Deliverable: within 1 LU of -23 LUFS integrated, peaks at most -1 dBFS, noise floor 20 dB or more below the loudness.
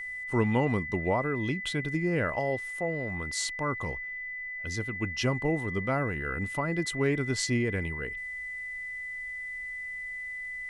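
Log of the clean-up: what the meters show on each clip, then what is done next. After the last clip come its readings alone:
steady tone 2 kHz; tone level -35 dBFS; loudness -31.0 LUFS; peak level -13.5 dBFS; loudness target -23.0 LUFS
-> band-stop 2 kHz, Q 30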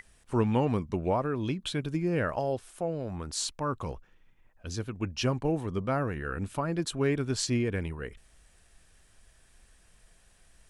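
steady tone not found; loudness -31.0 LUFS; peak level -14.0 dBFS; loudness target -23.0 LUFS
-> trim +8 dB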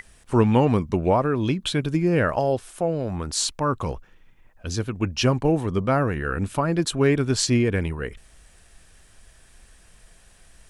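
loudness -23.0 LUFS; peak level -6.0 dBFS; noise floor -54 dBFS

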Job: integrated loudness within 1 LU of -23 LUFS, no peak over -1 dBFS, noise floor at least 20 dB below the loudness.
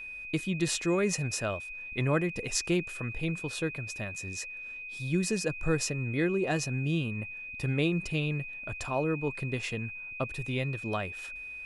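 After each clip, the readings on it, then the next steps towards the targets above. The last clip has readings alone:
steady tone 2.5 kHz; tone level -39 dBFS; loudness -31.5 LUFS; peak level -11.5 dBFS; loudness target -23.0 LUFS
-> band-stop 2.5 kHz, Q 30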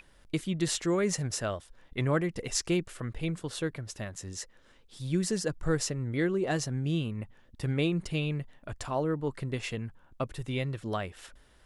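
steady tone not found; loudness -32.5 LUFS; peak level -12.0 dBFS; loudness target -23.0 LUFS
-> trim +9.5 dB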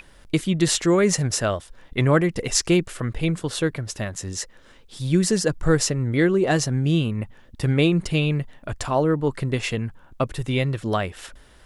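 loudness -23.0 LUFS; peak level -2.5 dBFS; noise floor -50 dBFS

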